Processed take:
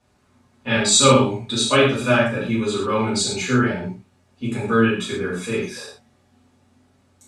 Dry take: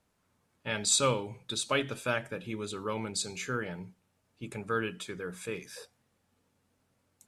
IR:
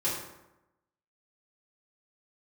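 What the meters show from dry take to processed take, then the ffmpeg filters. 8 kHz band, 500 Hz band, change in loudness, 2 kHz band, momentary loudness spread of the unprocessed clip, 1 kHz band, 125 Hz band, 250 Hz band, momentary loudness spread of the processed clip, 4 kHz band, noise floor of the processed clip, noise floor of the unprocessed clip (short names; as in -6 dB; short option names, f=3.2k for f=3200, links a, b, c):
+10.5 dB, +14.0 dB, +13.5 dB, +13.0 dB, 17 LU, +13.5 dB, +15.5 dB, +18.0 dB, 15 LU, +13.0 dB, -61 dBFS, -75 dBFS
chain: -filter_complex "[0:a]lowpass=8.3k[a];[1:a]atrim=start_sample=2205,atrim=end_sample=4410,asetrate=30870,aresample=44100[b];[a][b]afir=irnorm=-1:irlink=0,volume=3.5dB"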